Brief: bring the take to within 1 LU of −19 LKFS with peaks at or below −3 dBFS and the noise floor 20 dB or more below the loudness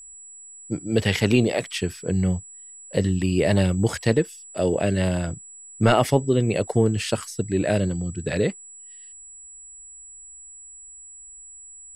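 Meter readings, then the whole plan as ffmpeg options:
interfering tone 7,800 Hz; level of the tone −41 dBFS; integrated loudness −23.0 LKFS; sample peak −5.0 dBFS; target loudness −19.0 LKFS
→ -af "bandreject=frequency=7800:width=30"
-af "volume=4dB,alimiter=limit=-3dB:level=0:latency=1"

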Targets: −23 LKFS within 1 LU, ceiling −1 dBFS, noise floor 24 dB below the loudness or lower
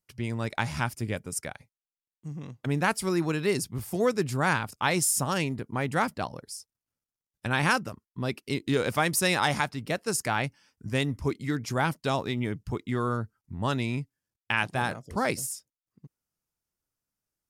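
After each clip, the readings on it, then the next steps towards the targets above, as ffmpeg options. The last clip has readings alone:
integrated loudness −28.5 LKFS; sample peak −10.0 dBFS; target loudness −23.0 LKFS
→ -af "volume=5.5dB"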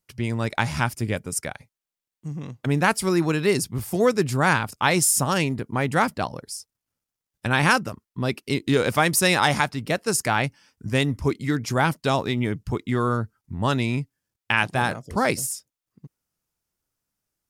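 integrated loudness −23.0 LKFS; sample peak −4.5 dBFS; background noise floor −89 dBFS

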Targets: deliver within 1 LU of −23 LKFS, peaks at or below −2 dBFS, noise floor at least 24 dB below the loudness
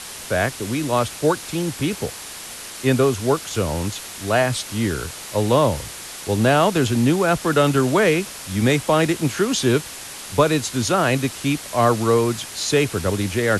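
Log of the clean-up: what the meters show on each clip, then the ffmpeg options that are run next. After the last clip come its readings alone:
background noise floor −35 dBFS; target noise floor −45 dBFS; integrated loudness −20.5 LKFS; sample peak −2.5 dBFS; target loudness −23.0 LKFS
→ -af "afftdn=noise_reduction=10:noise_floor=-35"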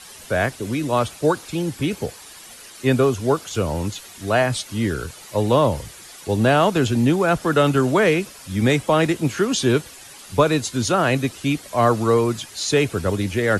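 background noise floor −42 dBFS; target noise floor −45 dBFS
→ -af "afftdn=noise_reduction=6:noise_floor=-42"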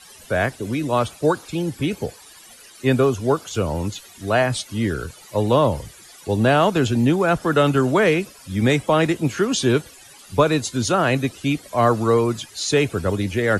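background noise floor −46 dBFS; integrated loudness −20.5 LKFS; sample peak −3.0 dBFS; target loudness −23.0 LKFS
→ -af "volume=-2.5dB"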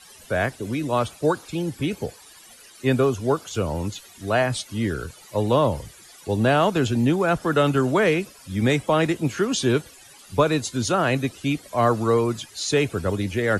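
integrated loudness −23.0 LKFS; sample peak −5.5 dBFS; background noise floor −48 dBFS

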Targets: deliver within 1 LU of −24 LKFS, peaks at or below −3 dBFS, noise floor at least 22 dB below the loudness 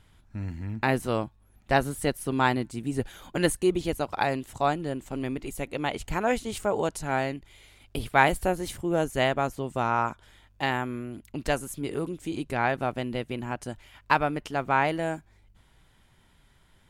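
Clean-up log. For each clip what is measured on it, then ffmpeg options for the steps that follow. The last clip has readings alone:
integrated loudness −28.5 LKFS; sample peak −5.5 dBFS; target loudness −24.0 LKFS
→ -af "volume=4.5dB,alimiter=limit=-3dB:level=0:latency=1"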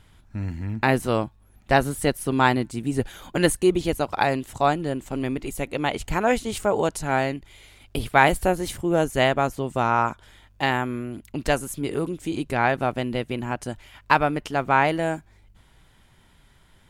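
integrated loudness −24.0 LKFS; sample peak −3.0 dBFS; background noise floor −56 dBFS

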